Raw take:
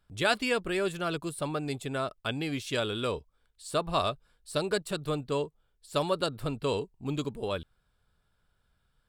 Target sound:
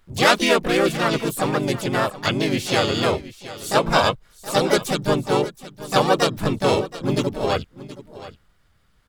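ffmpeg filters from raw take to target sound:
-filter_complex "[0:a]asplit=4[a][b][c][d];[b]asetrate=37084,aresample=44100,atempo=1.18921,volume=-3dB[e];[c]asetrate=58866,aresample=44100,atempo=0.749154,volume=-2dB[f];[d]asetrate=88200,aresample=44100,atempo=0.5,volume=-12dB[g];[a][e][f][g]amix=inputs=4:normalize=0,aecho=1:1:723:0.158,volume=7.5dB"

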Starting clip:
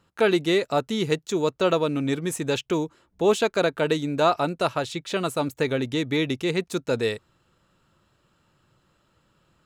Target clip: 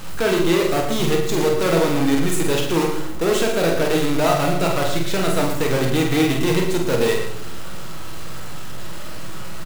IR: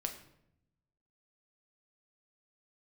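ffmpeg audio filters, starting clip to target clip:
-filter_complex "[0:a]aeval=exprs='val(0)+0.5*0.0376*sgn(val(0))':c=same,acrusher=bits=5:dc=4:mix=0:aa=0.000001,asoftclip=type=tanh:threshold=-20dB,asplit=2[a][b];[b]adelay=48,volume=-5dB[c];[a][c]amix=inputs=2:normalize=0,aecho=1:1:113:0.335[d];[1:a]atrim=start_sample=2205[e];[d][e]afir=irnorm=-1:irlink=0,volume=4dB"

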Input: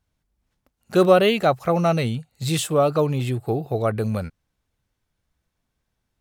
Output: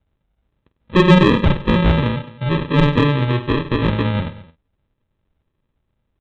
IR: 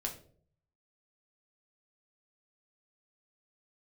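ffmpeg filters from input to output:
-filter_complex "[0:a]asplit=2[a][b];[b]adelay=48,volume=-10.5dB[c];[a][c]amix=inputs=2:normalize=0,aresample=8000,acrusher=samples=11:mix=1:aa=0.000001,aresample=44100,acontrast=51,aecho=1:1:99|215:0.168|0.106,volume=-1dB"

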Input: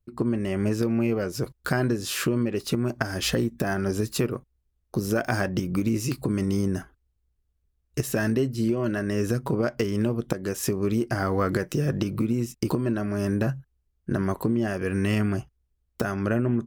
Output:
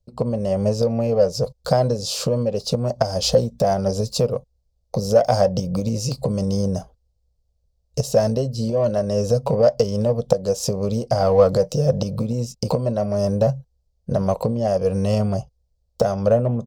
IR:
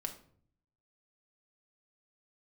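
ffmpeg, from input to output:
-filter_complex "[0:a]firequalizer=gain_entry='entry(180,0);entry(340,-17);entry(500,12);entry(1700,-16);entry(4600,5);entry(11000,-10)':delay=0.05:min_phase=1,acrossover=split=650|1900[a][b][c];[b]adynamicsmooth=sensitivity=3.5:basefreq=1.2k[d];[a][d][c]amix=inputs=3:normalize=0,volume=5dB"

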